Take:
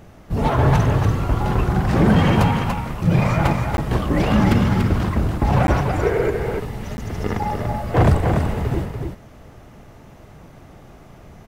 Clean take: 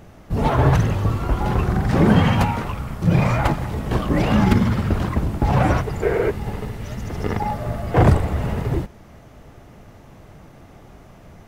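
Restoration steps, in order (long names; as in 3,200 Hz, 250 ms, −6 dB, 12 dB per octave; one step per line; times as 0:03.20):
clipped peaks rebuilt −8 dBFS
repair the gap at 0:03.77/0:05.67/0:06.97, 11 ms
echo removal 289 ms −5.5 dB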